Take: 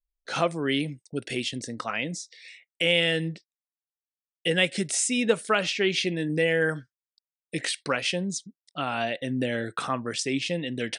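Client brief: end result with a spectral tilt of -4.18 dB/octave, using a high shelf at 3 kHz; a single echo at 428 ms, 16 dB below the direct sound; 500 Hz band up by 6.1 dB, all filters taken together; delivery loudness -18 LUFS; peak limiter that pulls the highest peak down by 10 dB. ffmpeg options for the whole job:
-af "equalizer=f=500:t=o:g=7,highshelf=f=3000:g=-3,alimiter=limit=0.211:level=0:latency=1,aecho=1:1:428:0.158,volume=2.66"

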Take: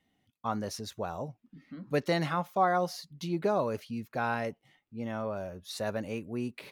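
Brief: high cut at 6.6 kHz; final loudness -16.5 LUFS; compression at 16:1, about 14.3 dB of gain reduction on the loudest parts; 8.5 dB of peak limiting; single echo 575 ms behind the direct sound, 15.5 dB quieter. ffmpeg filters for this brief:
-af "lowpass=6600,acompressor=threshold=0.0141:ratio=16,alimiter=level_in=3.35:limit=0.0631:level=0:latency=1,volume=0.299,aecho=1:1:575:0.168,volume=26.6"

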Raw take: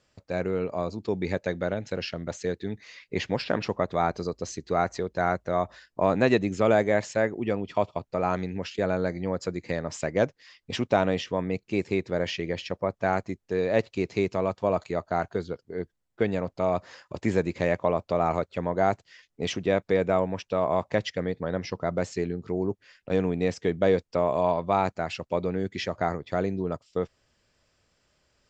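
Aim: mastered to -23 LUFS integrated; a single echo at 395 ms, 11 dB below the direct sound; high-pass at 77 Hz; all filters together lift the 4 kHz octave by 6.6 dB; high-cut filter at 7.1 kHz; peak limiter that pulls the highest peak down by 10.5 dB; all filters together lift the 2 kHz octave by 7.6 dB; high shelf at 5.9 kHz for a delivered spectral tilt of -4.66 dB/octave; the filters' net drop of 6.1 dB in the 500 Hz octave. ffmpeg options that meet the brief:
-af "highpass=77,lowpass=7100,equalizer=f=500:t=o:g=-8.5,equalizer=f=2000:t=o:g=8.5,equalizer=f=4000:t=o:g=4,highshelf=f=5900:g=5.5,alimiter=limit=0.15:level=0:latency=1,aecho=1:1:395:0.282,volume=2.51"

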